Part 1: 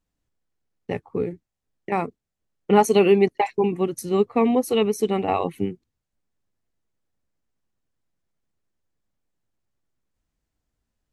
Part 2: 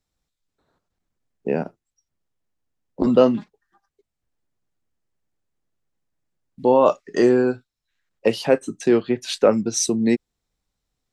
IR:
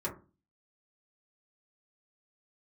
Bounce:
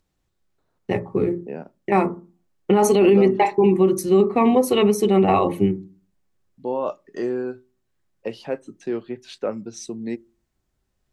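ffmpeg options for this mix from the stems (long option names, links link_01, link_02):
-filter_complex "[0:a]volume=1.5dB,asplit=2[link_01][link_02];[link_02]volume=-6.5dB[link_03];[1:a]highshelf=frequency=6100:gain=-11,acompressor=mode=upward:threshold=-57dB:ratio=2.5,volume=-10.5dB,asplit=2[link_04][link_05];[link_05]volume=-23.5dB[link_06];[2:a]atrim=start_sample=2205[link_07];[link_03][link_06]amix=inputs=2:normalize=0[link_08];[link_08][link_07]afir=irnorm=-1:irlink=0[link_09];[link_01][link_04][link_09]amix=inputs=3:normalize=0,alimiter=limit=-7.5dB:level=0:latency=1:release=15"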